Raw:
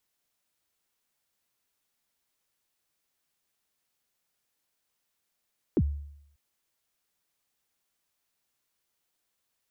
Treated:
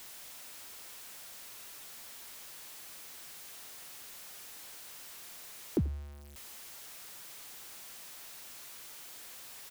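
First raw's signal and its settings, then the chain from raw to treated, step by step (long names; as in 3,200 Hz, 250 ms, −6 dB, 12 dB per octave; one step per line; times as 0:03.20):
synth kick length 0.59 s, from 420 Hz, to 72 Hz, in 52 ms, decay 0.75 s, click off, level −18 dB
converter with a step at zero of −42.5 dBFS
low-shelf EQ 330 Hz −5.5 dB
single-tap delay 86 ms −21 dB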